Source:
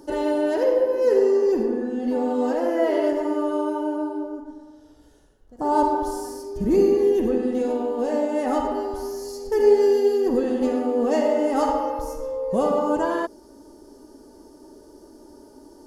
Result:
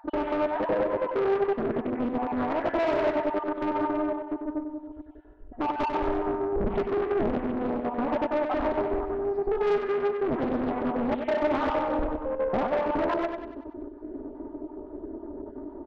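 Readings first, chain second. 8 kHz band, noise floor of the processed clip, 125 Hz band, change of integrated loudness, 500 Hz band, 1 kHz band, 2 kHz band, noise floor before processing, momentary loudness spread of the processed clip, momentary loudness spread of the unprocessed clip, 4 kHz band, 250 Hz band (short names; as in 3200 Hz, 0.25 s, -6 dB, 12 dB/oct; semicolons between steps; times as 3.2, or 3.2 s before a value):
under -20 dB, -45 dBFS, n/a, -5.5 dB, -6.0 dB, -2.5 dB, +1.0 dB, -50 dBFS, 14 LU, 11 LU, -4.0 dB, -5.0 dB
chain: random spectral dropouts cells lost 36%; comb 3 ms, depth 55%; dynamic EQ 340 Hz, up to -8 dB, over -32 dBFS, Q 1.4; in parallel at -3 dB: compressor, threshold -31 dBFS, peak gain reduction 14 dB; on the sum: hard clip -18.5 dBFS, distortion -15 dB; Gaussian blur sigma 4.6 samples; soft clip -24.5 dBFS, distortion -13 dB; on a send: feedback echo 95 ms, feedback 49%, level -6 dB; on the sum: Doppler distortion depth 0.78 ms; gain +2 dB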